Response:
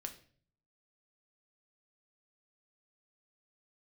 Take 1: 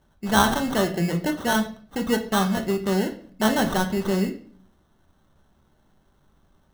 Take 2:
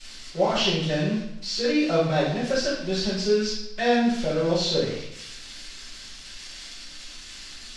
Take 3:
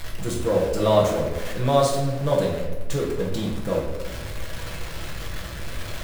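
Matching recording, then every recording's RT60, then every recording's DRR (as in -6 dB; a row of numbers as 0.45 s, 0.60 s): 1; 0.50 s, 0.80 s, 1.2 s; 5.0 dB, -13.0 dB, -3.5 dB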